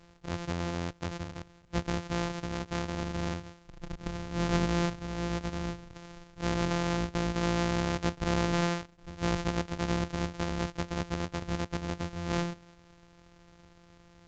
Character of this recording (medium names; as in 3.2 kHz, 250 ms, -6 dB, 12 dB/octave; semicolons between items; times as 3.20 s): a buzz of ramps at a fixed pitch in blocks of 256 samples; A-law